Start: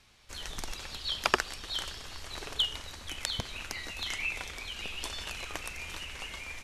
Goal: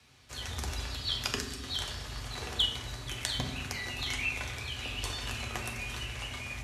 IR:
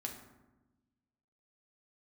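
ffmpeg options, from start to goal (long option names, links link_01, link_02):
-filter_complex "[0:a]asettb=1/sr,asplit=3[link_01][link_02][link_03];[link_01]atrim=end=1.224[link_04];[link_02]atrim=start=1.22:end=1.8,asetpts=PTS-STARTPTS,afade=type=in:duration=0.004:curve=qsin,afade=type=out:start_time=0.576:duration=0.004:curve=qsin,acrossover=split=280|3000[link_05][link_06][link_07];[link_06]acompressor=threshold=-40dB:ratio=6[link_08];[link_05][link_08][link_07]amix=inputs=3:normalize=0[link_09];[link_03]atrim=start=1.796[link_10];[link_04][link_09]acrossfade=duration=0.004:curve1=hsin:curve2=qsin[link_11];[link_11][link_10]acrossfade=duration=0.004:curve1=qsin:curve2=hsin,afreqshift=42[link_12];[1:a]atrim=start_sample=2205[link_13];[link_12][link_13]afir=irnorm=-1:irlink=0,volume=3dB"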